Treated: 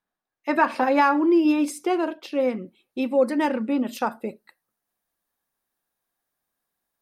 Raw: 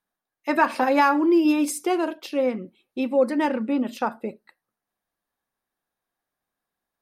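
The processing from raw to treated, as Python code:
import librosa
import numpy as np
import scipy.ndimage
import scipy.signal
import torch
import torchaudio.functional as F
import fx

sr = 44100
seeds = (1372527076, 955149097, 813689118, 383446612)

y = fx.high_shelf(x, sr, hz=6200.0, db=fx.steps((0.0, -9.0), (2.39, 3.0), (3.89, 8.5)))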